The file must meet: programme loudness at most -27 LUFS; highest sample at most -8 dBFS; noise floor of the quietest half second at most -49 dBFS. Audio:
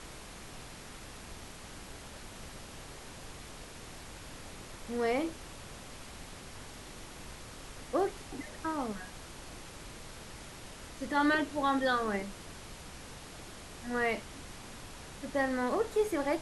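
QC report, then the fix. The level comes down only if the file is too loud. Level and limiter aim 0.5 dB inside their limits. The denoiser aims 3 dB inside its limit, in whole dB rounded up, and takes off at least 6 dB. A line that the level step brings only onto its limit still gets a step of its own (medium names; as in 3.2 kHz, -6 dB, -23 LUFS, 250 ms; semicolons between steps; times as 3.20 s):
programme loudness -37.0 LUFS: pass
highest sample -17.0 dBFS: pass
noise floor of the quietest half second -47 dBFS: fail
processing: noise reduction 6 dB, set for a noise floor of -47 dBFS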